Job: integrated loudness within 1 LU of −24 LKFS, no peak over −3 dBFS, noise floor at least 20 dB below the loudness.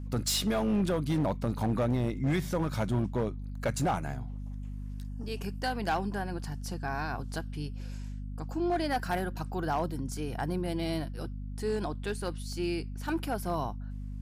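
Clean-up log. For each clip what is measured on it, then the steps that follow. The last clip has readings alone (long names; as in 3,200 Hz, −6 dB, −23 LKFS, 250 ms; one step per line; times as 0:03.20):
share of clipped samples 1.8%; peaks flattened at −23.0 dBFS; mains hum 50 Hz; hum harmonics up to 250 Hz; level of the hum −36 dBFS; integrated loudness −33.0 LKFS; sample peak −23.0 dBFS; target loudness −24.0 LKFS
→ clipped peaks rebuilt −23 dBFS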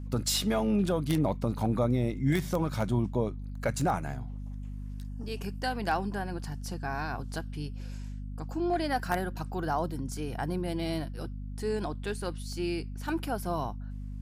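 share of clipped samples 0.0%; mains hum 50 Hz; hum harmonics up to 250 Hz; level of the hum −36 dBFS
→ hum removal 50 Hz, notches 5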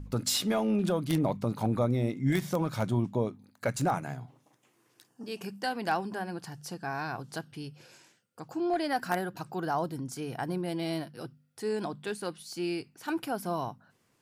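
mains hum none found; integrated loudness −32.0 LKFS; sample peak −13.5 dBFS; target loudness −24.0 LKFS
→ level +8 dB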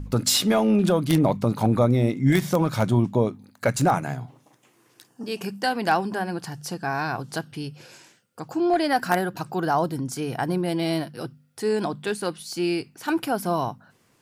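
integrated loudness −24.0 LKFS; sample peak −5.5 dBFS; background noise floor −63 dBFS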